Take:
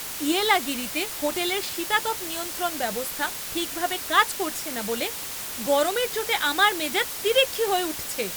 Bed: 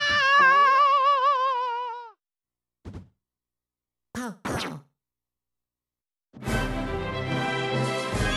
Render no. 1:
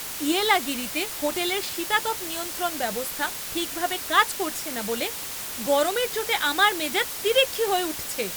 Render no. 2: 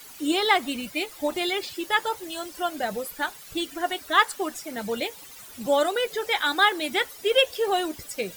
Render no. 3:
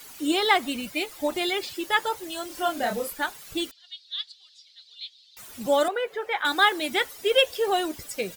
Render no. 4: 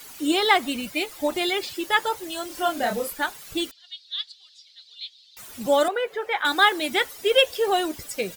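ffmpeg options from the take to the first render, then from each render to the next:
-af anull
-af "afftdn=nr=15:nf=-34"
-filter_complex "[0:a]asplit=3[a][b][c];[a]afade=t=out:st=2.49:d=0.02[d];[b]asplit=2[e][f];[f]adelay=30,volume=-3dB[g];[e][g]amix=inputs=2:normalize=0,afade=t=in:st=2.49:d=0.02,afade=t=out:st=3.12:d=0.02[h];[c]afade=t=in:st=3.12:d=0.02[i];[d][h][i]amix=inputs=3:normalize=0,asettb=1/sr,asplit=3[j][k][l];[j]atrim=end=3.714[m];[k]atrim=start=3.71:end=5.37,asetpts=PTS-STARTPTS,afade=t=in:d=0.004:c=qsin,afade=t=out:st=1.656:d=0.004:c=qsin,asuperpass=centerf=4000:order=4:qfactor=3.1[n];[l]atrim=start=5.366[o];[m][n]acrossfade=d=0.004:c1=hsin:c2=qsin[p];[p][o]acrossfade=d=0.004:c1=qsin:c2=hsin,asettb=1/sr,asplit=3[q][r][s];[q]atrim=end=5.884[t];[r]atrim=start=5.88:end=6.45,asetpts=PTS-STARTPTS,afade=t=in:d=0.004:c=qsin,afade=t=out:st=0.566:d=0.004:c=qsin,acrossover=split=370 2500:gain=0.224 1 0.126[u][v][w];[u][v][w]amix=inputs=3:normalize=0[x];[s]atrim=start=6.446[y];[t][x]acrossfade=d=0.004:c1=hsin:c2=qsin[z];[z][y]acrossfade=d=0.004:c1=qsin:c2=hsin"
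-af "volume=2dB"

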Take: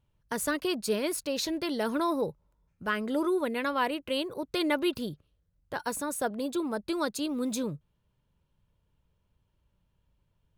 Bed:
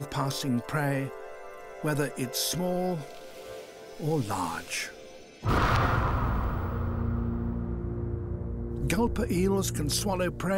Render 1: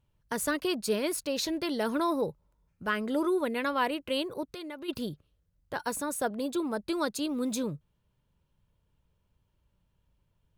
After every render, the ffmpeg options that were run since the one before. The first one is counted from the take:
-filter_complex "[0:a]asplit=3[a][b][c];[a]afade=t=out:st=4.44:d=0.02[d];[b]acompressor=threshold=-42dB:ratio=3:attack=3.2:release=140:knee=1:detection=peak,afade=t=in:st=4.44:d=0.02,afade=t=out:st=4.88:d=0.02[e];[c]afade=t=in:st=4.88:d=0.02[f];[d][e][f]amix=inputs=3:normalize=0"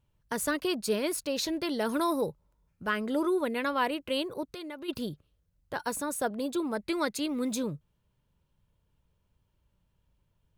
-filter_complex "[0:a]asettb=1/sr,asplit=3[a][b][c];[a]atrim=end=1.894[d];[b]atrim=start=1.89:end=2.29,asetpts=PTS-STARTPTS,afade=t=in:d=0.004:c=qsin,afade=t=out:st=0.396:d=0.004:c=qsin,equalizer=f=11k:w=0.54:g=9[e];[c]atrim=start=2.286[f];[d][e]acrossfade=d=0.004:c1=hsin:c2=qsin[g];[g][f]acrossfade=d=0.004:c1=qsin:c2=hsin,asettb=1/sr,asplit=3[h][i][j];[h]atrim=end=6.754[k];[i]atrim=start=6.75:end=7.48,asetpts=PTS-STARTPTS,afade=t=in:d=0.004:c=qsin,afade=t=out:st=0.726:d=0.004:c=qsin,equalizer=f=2.1k:t=o:w=0.37:g=11.5[l];[j]atrim=start=7.476[m];[k][l]acrossfade=d=0.004:c1=hsin:c2=qsin[n];[n][m]acrossfade=d=0.004:c1=qsin:c2=hsin"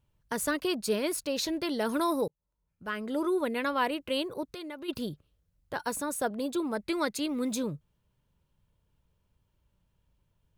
-filter_complex "[0:a]asplit=2[a][b];[a]atrim=end=2.28,asetpts=PTS-STARTPTS,afade=t=out:st=2.276:d=0.004:c=hsin[c];[b]atrim=start=2.28,asetpts=PTS-STARTPTS,afade=t=in:d=1.12[d];[c][d]concat=n=2:v=0:a=1"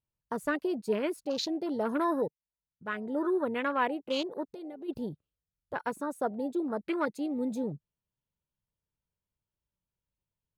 -af "afwtdn=0.0158,lowshelf=f=98:g=-6"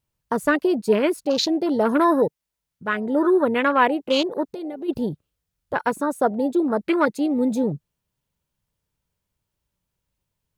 -af "volume=11dB"

